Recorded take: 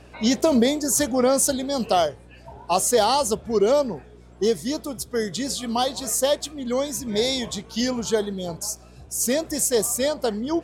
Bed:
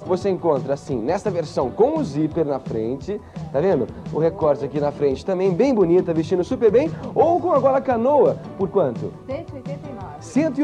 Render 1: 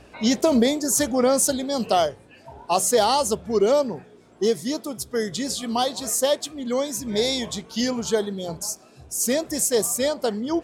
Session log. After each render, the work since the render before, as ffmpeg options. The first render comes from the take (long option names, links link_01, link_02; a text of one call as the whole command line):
ffmpeg -i in.wav -af "bandreject=frequency=60:width_type=h:width=4,bandreject=frequency=120:width_type=h:width=4,bandreject=frequency=180:width_type=h:width=4" out.wav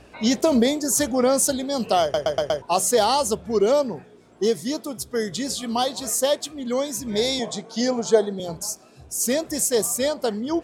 ffmpeg -i in.wav -filter_complex "[0:a]asettb=1/sr,asplit=3[link_01][link_02][link_03];[link_01]atrim=end=7.394[link_04];[link_02]atrim=start=7.39:end=8.4,asetpts=PTS-STARTPTS,afade=type=in:duration=0.004:curve=qsin,afade=type=out:start_time=1.006:duration=0.004:curve=qsin,highpass=frequency=140:width=0.5412,highpass=frequency=140:width=1.3066,equalizer=frequency=470:width_type=q:width=4:gain=5,equalizer=frequency=700:width_type=q:width=4:gain=10,equalizer=frequency=2800:width_type=q:width=4:gain=-8,lowpass=frequency=9700:width=0.5412,lowpass=frequency=9700:width=1.3066[link_05];[link_03]atrim=start=8.396[link_06];[link_04][link_05]acrossfade=duration=0.004:curve1=hsin:curve2=qsin[link_07];[link_07][link_06]acrossfade=duration=0.004:curve1=qsin:curve2=hsin,asplit=6[link_08][link_09][link_10][link_11][link_12][link_13];[link_08]atrim=end=2.142[link_14];[link_09]atrim=start=2.018:end=2.142[link_15];[link_10]atrim=start=2.018:end=2.142[link_16];[link_11]atrim=start=2.018:end=2.142[link_17];[link_12]atrim=start=2.018:end=2.142[link_18];[link_13]atrim=start=2.618[link_19];[link_14][link_15]acrossfade=duration=0.004:curve1=hsin:curve2=hsin[link_20];[link_20][link_16]acrossfade=duration=0.004:curve1=hsin:curve2=hsin[link_21];[link_21][link_17]acrossfade=duration=0.004:curve1=hsin:curve2=hsin[link_22];[link_22][link_18]acrossfade=duration=0.004:curve1=hsin:curve2=hsin[link_23];[link_23][link_19]acrossfade=duration=0.004:curve1=hsin:curve2=hsin" out.wav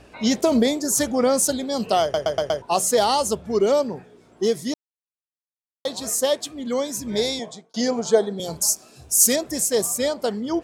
ffmpeg -i in.wav -filter_complex "[0:a]asettb=1/sr,asplit=3[link_01][link_02][link_03];[link_01]atrim=end=8.394[link_04];[link_02]atrim=start=8.39:end=9.36,asetpts=PTS-STARTPTS,afade=type=in:duration=0.004:curve=qsin,afade=type=out:start_time=0.966:duration=0.004:curve=qsin,highshelf=frequency=3800:gain=11[link_05];[link_03]atrim=start=9.356[link_06];[link_04][link_05]acrossfade=duration=0.004:curve1=hsin:curve2=qsin[link_07];[link_07][link_06]acrossfade=duration=0.004:curve1=qsin:curve2=hsin,asplit=4[link_08][link_09][link_10][link_11];[link_08]atrim=end=4.74,asetpts=PTS-STARTPTS,afade=type=out:start_time=4.736:duration=0.004:curve=hsin[link_12];[link_09]atrim=start=4.74:end=5.85,asetpts=PTS-STARTPTS,volume=0[link_13];[link_10]atrim=start=5.85:end=7.74,asetpts=PTS-STARTPTS,afade=type=in:duration=0.004:curve=hsin,afade=type=out:start_time=1.35:duration=0.54[link_14];[link_11]atrim=start=7.74,asetpts=PTS-STARTPTS,afade=type=in:duration=0.004:curve=hsin[link_15];[link_12][link_13][link_14][link_15]concat=n=4:v=0:a=1" out.wav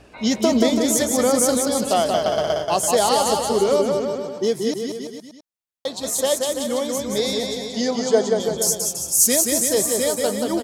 ffmpeg -i in.wav -af "aecho=1:1:180|333|463|573.6|667.6:0.631|0.398|0.251|0.158|0.1" out.wav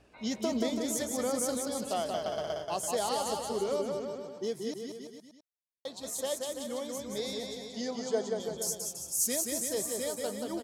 ffmpeg -i in.wav -af "volume=-13.5dB" out.wav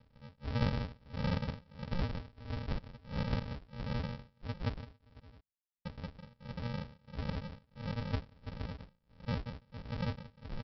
ffmpeg -i in.wav -af "tremolo=f=1.5:d=0.97,aresample=11025,acrusher=samples=31:mix=1:aa=0.000001,aresample=44100" out.wav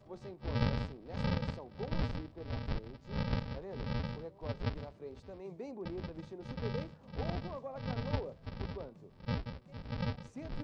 ffmpeg -i in.wav -i bed.wav -filter_complex "[1:a]volume=-27.5dB[link_01];[0:a][link_01]amix=inputs=2:normalize=0" out.wav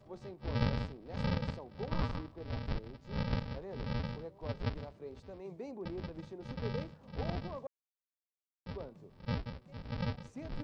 ffmpeg -i in.wav -filter_complex "[0:a]asettb=1/sr,asplit=3[link_01][link_02][link_03];[link_01]atrim=end=1.894[link_04];[link_02]atrim=start=1.89:end=2.37,asetpts=PTS-STARTPTS,afade=type=in:duration=0.004:curve=qsin,afade=type=out:start_time=0.476:duration=0.004:curve=qsin,equalizer=frequency=1100:width=2.8:gain=8.5[link_05];[link_03]atrim=start=2.366[link_06];[link_04][link_05]acrossfade=duration=0.004:curve1=hsin:curve2=qsin[link_07];[link_07][link_06]acrossfade=duration=0.004:curve1=qsin:curve2=hsin,asplit=3[link_08][link_09][link_10];[link_08]atrim=end=7.67,asetpts=PTS-STARTPTS,afade=type=out:start_time=7.666:duration=0.004:curve=hsin[link_11];[link_09]atrim=start=7.67:end=8.66,asetpts=PTS-STARTPTS,volume=0[link_12];[link_10]atrim=start=8.66,asetpts=PTS-STARTPTS,afade=type=in:duration=0.004:curve=hsin[link_13];[link_11][link_12][link_13]concat=n=3:v=0:a=1" out.wav